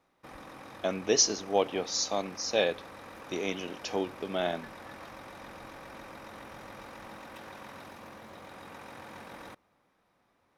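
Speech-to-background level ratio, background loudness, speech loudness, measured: 17.0 dB, −47.0 LKFS, −30.0 LKFS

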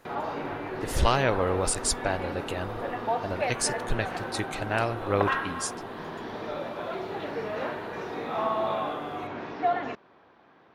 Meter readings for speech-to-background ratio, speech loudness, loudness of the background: 3.0 dB, −29.5 LKFS, −32.5 LKFS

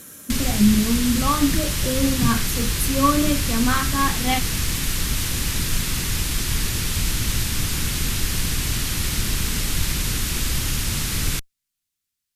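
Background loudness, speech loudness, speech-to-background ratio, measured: −23.5 LKFS, −22.5 LKFS, 1.0 dB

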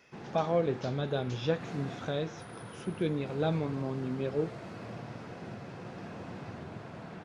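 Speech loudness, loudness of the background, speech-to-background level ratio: −33.5 LKFS, −44.5 LKFS, 11.0 dB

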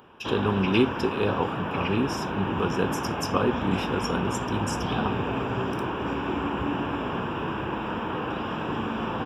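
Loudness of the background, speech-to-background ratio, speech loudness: −29.5 LKFS, 1.0 dB, −28.5 LKFS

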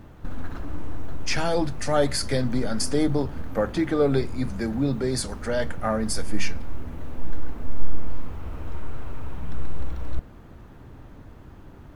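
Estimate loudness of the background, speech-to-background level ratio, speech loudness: −39.0 LKFS, 12.5 dB, −26.5 LKFS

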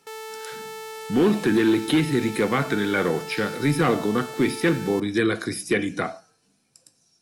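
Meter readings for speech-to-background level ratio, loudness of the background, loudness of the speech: 13.0 dB, −36.0 LKFS, −23.0 LKFS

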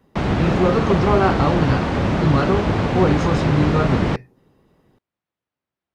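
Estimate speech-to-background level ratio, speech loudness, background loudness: −0.5 dB, −21.0 LKFS, −20.5 LKFS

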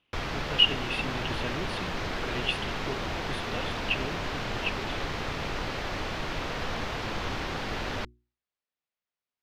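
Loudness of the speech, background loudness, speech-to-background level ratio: −31.0 LKFS, −33.0 LKFS, 2.0 dB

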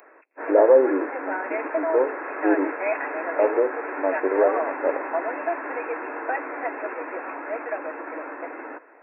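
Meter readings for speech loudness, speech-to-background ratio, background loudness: −23.0 LKFS, 6.5 dB, −29.5 LKFS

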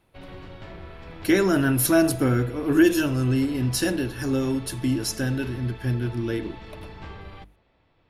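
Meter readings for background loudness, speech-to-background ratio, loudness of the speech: −42.0 LKFS, 18.5 dB, −23.5 LKFS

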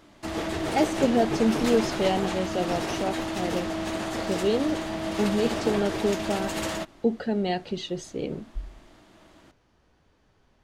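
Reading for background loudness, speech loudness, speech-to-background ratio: −30.0 LKFS, −28.0 LKFS, 2.0 dB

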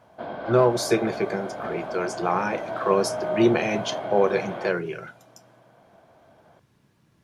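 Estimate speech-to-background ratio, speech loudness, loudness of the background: 7.0 dB, −25.0 LKFS, −32.0 LKFS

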